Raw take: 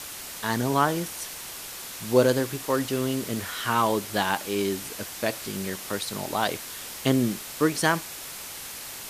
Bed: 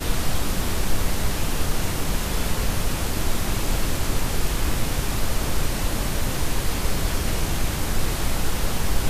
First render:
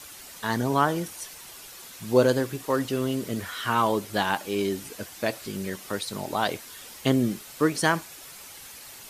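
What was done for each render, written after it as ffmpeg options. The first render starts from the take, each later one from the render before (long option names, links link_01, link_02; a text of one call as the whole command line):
ffmpeg -i in.wav -af "afftdn=noise_reduction=8:noise_floor=-39" out.wav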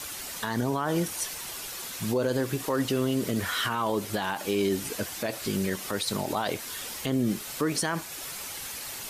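ffmpeg -i in.wav -filter_complex "[0:a]asplit=2[link_01][link_02];[link_02]acompressor=threshold=-31dB:ratio=6,volume=1dB[link_03];[link_01][link_03]amix=inputs=2:normalize=0,alimiter=limit=-17dB:level=0:latency=1:release=57" out.wav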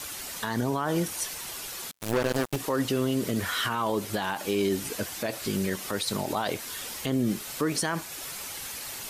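ffmpeg -i in.wav -filter_complex "[0:a]asettb=1/sr,asplit=3[link_01][link_02][link_03];[link_01]atrim=end=1.914[link_04];[link_02]atrim=start=1.91:end=2.56,asetpts=PTS-STARTPTS,afade=type=in:duration=0.004:curve=qsin,afade=type=out:start_time=0.646:duration=0.004:curve=qsin,acrusher=bits=3:mix=0:aa=0.5[link_05];[link_03]atrim=start=2.556[link_06];[link_04][link_05]acrossfade=duration=0.004:curve1=hsin:curve2=qsin[link_07];[link_07][link_06]acrossfade=duration=0.004:curve1=qsin:curve2=hsin" out.wav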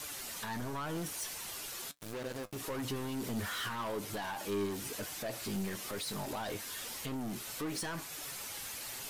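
ffmpeg -i in.wav -af "asoftclip=type=tanh:threshold=-30dB,flanger=delay=6.6:depth=3.4:regen=62:speed=0.98:shape=sinusoidal" out.wav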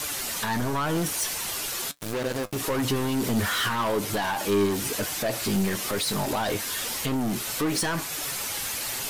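ffmpeg -i in.wav -af "volume=12dB" out.wav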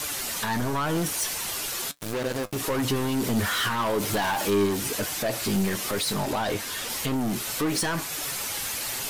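ffmpeg -i in.wav -filter_complex "[0:a]asettb=1/sr,asplit=3[link_01][link_02][link_03];[link_01]atrim=end=4.004[link_04];[link_02]atrim=start=4:end=4.5,asetpts=PTS-STARTPTS,afade=type=in:duration=0.004:curve=qsin,afade=type=out:start_time=0.496:duration=0.004:curve=qsin,aeval=exprs='val(0)+0.5*0.0211*sgn(val(0))':channel_layout=same[link_05];[link_03]atrim=start=4.496[link_06];[link_04][link_05]acrossfade=duration=0.004:curve1=hsin:curve2=qsin[link_07];[link_07][link_06]acrossfade=duration=0.004:curve1=qsin:curve2=hsin,asettb=1/sr,asplit=3[link_08][link_09][link_10];[link_08]atrim=end=6.134[link_11];[link_09]atrim=start=6.13:end=6.9,asetpts=PTS-STARTPTS,afade=type=in:duration=0.004:curve=qsin,afade=type=out:start_time=0.766:duration=0.004:curve=qsin,highshelf=frequency=6700:gain=-5[link_12];[link_10]atrim=start=6.896[link_13];[link_11][link_12]acrossfade=duration=0.004:curve1=hsin:curve2=qsin[link_14];[link_14][link_13]acrossfade=duration=0.004:curve1=qsin:curve2=hsin" out.wav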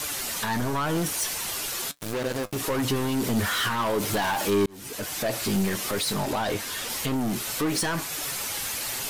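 ffmpeg -i in.wav -filter_complex "[0:a]asplit=2[link_01][link_02];[link_01]atrim=end=4.66,asetpts=PTS-STARTPTS,afade=type=out:start_time=4.656:duration=0.004:curve=hsin[link_03];[link_02]atrim=start=4.66,asetpts=PTS-STARTPTS,afade=type=in:duration=0.57[link_04];[link_03][link_04]concat=n=2:v=0:a=1" out.wav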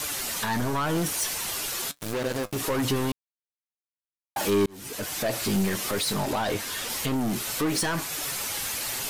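ffmpeg -i in.wav -filter_complex "[0:a]asplit=3[link_01][link_02][link_03];[link_01]atrim=end=3.12,asetpts=PTS-STARTPTS,afade=type=out:start_time=3.116:duration=0.004:curve=hsin[link_04];[link_02]atrim=start=3.12:end=4.36,asetpts=PTS-STARTPTS,volume=0[link_05];[link_03]atrim=start=4.36,asetpts=PTS-STARTPTS,afade=type=in:duration=0.004:curve=hsin[link_06];[link_04][link_05][link_06]concat=n=3:v=0:a=1" out.wav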